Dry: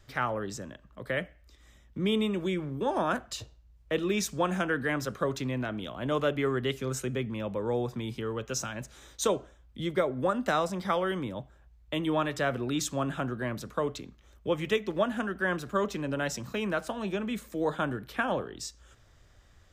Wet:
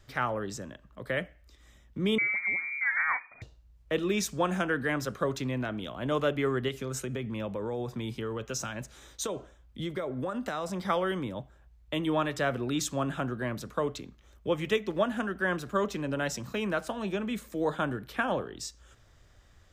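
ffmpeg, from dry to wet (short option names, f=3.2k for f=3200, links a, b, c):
-filter_complex "[0:a]asettb=1/sr,asplit=3[a][b][c];[a]atrim=end=2.184[d];[b]atrim=start=2.18:end=3.42,asetpts=PTS-STARTPTS,afade=t=in:d=0.004:c=qsin,afade=t=out:st=1.236:d=0.004:c=qsin,lowpass=f=2.1k:t=q:w=0.5098,lowpass=f=2.1k:t=q:w=0.6013,lowpass=f=2.1k:t=q:w=0.9,lowpass=f=2.1k:t=q:w=2.563,afreqshift=-2500[e];[c]atrim=start=3.416[f];[d][e]acrossfade=d=0.004:c1=hsin:c2=qsin[g];[g][f]acrossfade=d=0.004:c1=qsin:c2=hsin,asettb=1/sr,asplit=3[h][i][j];[h]atrim=end=6.684[k];[i]atrim=start=6.68:end=10.83,asetpts=PTS-STARTPTS,afade=t=in:d=0.004:c=qsin,afade=t=out:st=4.146:d=0.004:c=qsin,acompressor=threshold=-29dB:ratio=6:attack=3.2:release=140:knee=1:detection=peak[l];[j]atrim=start=10.826[m];[k][l]acrossfade=d=0.004:c1=hsin:c2=qsin[n];[n][m]acrossfade=d=0.004:c1=qsin:c2=hsin"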